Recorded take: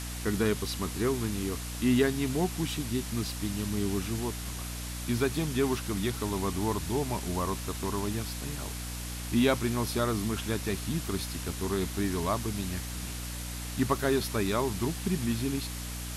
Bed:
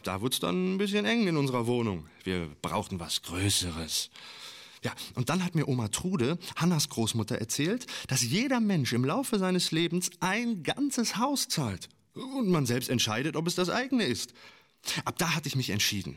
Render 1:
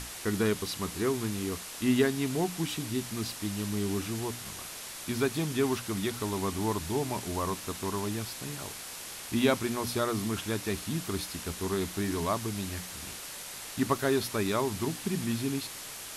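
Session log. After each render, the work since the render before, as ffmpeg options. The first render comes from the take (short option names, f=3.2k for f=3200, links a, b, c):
-af "bandreject=f=60:t=h:w=6,bandreject=f=120:t=h:w=6,bandreject=f=180:t=h:w=6,bandreject=f=240:t=h:w=6,bandreject=f=300:t=h:w=6"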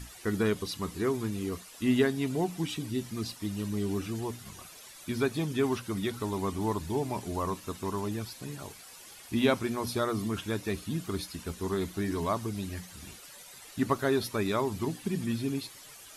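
-af "afftdn=nr=12:nf=-42"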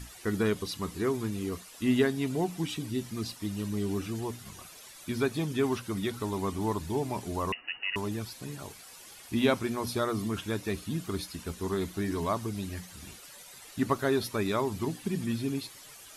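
-filter_complex "[0:a]asettb=1/sr,asplit=3[a][b][c];[a]atrim=end=7.524[d];[b]atrim=start=7.52:end=7.96,asetpts=PTS-STARTPTS,afade=t=in:d=0.004:c=qsin,afade=t=out:st=0.436:d=0.004:c=qsin,lowpass=f=2.6k:t=q:w=0.5098,lowpass=f=2.6k:t=q:w=0.6013,lowpass=f=2.6k:t=q:w=0.9,lowpass=f=2.6k:t=q:w=2.563,afreqshift=-3000[e];[c]atrim=start=7.956[f];[d][e]acrossfade=d=0.004:c1=hsin:c2=qsin[g];[g][f]acrossfade=d=0.004:c1=qsin:c2=hsin"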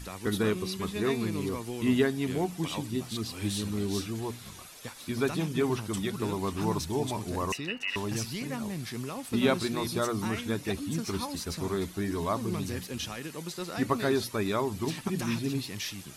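-filter_complex "[1:a]volume=-9dB[a];[0:a][a]amix=inputs=2:normalize=0"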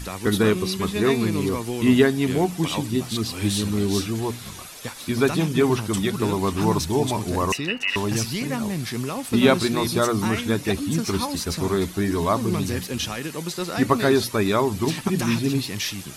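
-af "volume=8.5dB"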